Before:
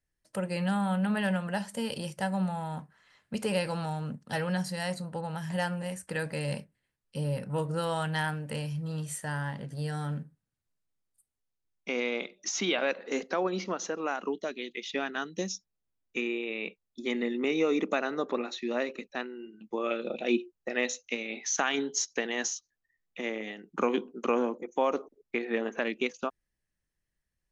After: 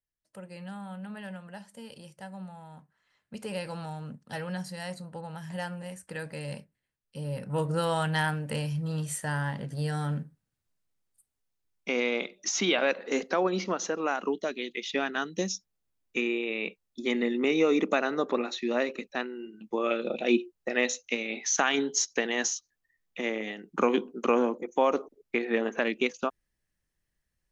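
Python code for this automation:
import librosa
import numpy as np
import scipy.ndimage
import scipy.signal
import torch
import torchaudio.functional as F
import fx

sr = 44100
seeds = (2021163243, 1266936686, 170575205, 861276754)

y = fx.gain(x, sr, db=fx.line((2.77, -12.0), (3.72, -4.5), (7.21, -4.5), (7.65, 3.0)))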